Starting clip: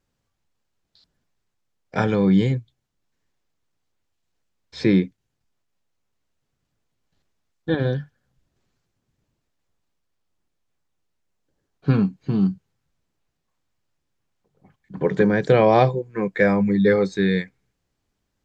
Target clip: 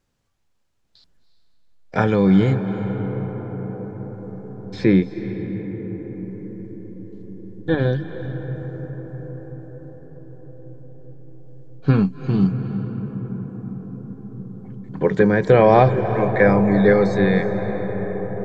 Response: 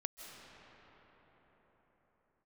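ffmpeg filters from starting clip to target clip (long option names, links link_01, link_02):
-filter_complex "[0:a]acrossover=split=2500[link_01][link_02];[link_02]acompressor=threshold=-43dB:ratio=4:attack=1:release=60[link_03];[link_01][link_03]amix=inputs=2:normalize=0,asplit=2[link_04][link_05];[link_05]asubboost=boost=5:cutoff=86[link_06];[1:a]atrim=start_sample=2205,asetrate=24255,aresample=44100[link_07];[link_06][link_07]afir=irnorm=-1:irlink=0,volume=-1dB[link_08];[link_04][link_08]amix=inputs=2:normalize=0,volume=-2dB"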